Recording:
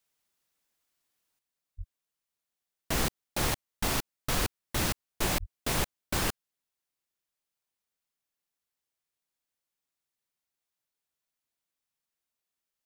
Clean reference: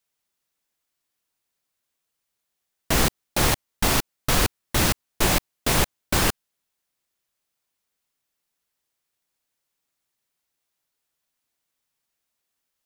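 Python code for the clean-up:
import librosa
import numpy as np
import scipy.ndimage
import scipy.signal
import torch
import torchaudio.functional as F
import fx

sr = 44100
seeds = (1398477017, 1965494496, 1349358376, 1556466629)

y = fx.fix_deplosive(x, sr, at_s=(1.77, 5.39))
y = fx.gain(y, sr, db=fx.steps((0.0, 0.0), (1.39, 8.5)))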